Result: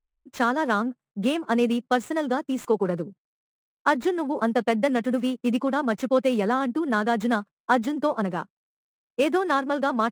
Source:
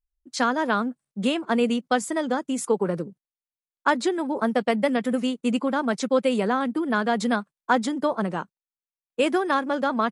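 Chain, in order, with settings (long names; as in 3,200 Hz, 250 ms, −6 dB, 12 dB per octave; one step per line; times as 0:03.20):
running median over 9 samples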